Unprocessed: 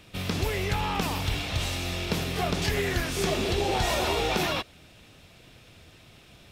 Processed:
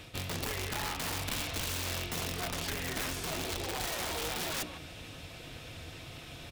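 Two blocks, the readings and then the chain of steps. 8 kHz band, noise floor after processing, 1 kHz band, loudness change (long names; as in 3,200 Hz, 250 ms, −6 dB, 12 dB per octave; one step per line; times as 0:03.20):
−1.0 dB, −48 dBFS, −9.0 dB, −7.5 dB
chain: mains-hum notches 60/120/180/240/300/360 Hz
reversed playback
downward compressor 16 to 1, threshold −38 dBFS, peak gain reduction 17 dB
reversed playback
notch comb filter 200 Hz
far-end echo of a speakerphone 150 ms, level −12 dB
wrap-around overflow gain 36.5 dB
level +7.5 dB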